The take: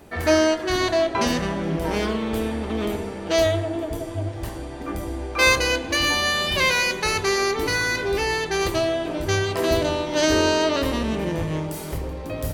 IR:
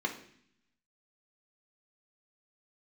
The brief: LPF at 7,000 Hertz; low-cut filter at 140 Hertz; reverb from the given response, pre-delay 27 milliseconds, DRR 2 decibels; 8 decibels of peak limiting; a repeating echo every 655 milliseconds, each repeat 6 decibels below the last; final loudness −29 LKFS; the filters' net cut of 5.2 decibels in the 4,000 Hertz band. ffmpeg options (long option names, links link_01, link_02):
-filter_complex "[0:a]highpass=140,lowpass=7000,equalizer=frequency=4000:width_type=o:gain=-6.5,alimiter=limit=-15dB:level=0:latency=1,aecho=1:1:655|1310|1965|2620|3275|3930:0.501|0.251|0.125|0.0626|0.0313|0.0157,asplit=2[link_01][link_02];[1:a]atrim=start_sample=2205,adelay=27[link_03];[link_02][link_03]afir=irnorm=-1:irlink=0,volume=-8dB[link_04];[link_01][link_04]amix=inputs=2:normalize=0,volume=-8dB"